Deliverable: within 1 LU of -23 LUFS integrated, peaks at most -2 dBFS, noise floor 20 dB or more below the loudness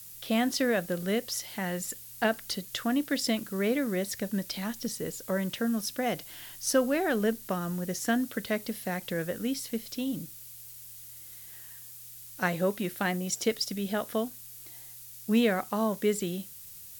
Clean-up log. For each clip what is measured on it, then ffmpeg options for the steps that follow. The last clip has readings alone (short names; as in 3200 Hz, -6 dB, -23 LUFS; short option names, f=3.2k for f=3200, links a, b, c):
noise floor -47 dBFS; noise floor target -51 dBFS; loudness -30.5 LUFS; peak -12.0 dBFS; loudness target -23.0 LUFS
-> -af "afftdn=nr=6:nf=-47"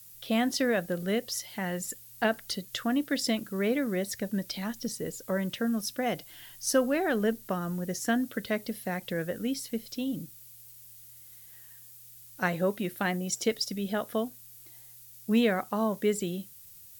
noise floor -51 dBFS; loudness -30.5 LUFS; peak -12.5 dBFS; loudness target -23.0 LUFS
-> -af "volume=7.5dB"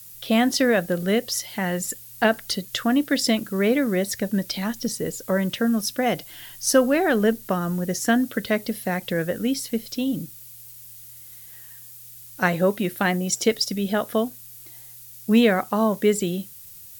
loudness -23.0 LUFS; peak -5.0 dBFS; noise floor -44 dBFS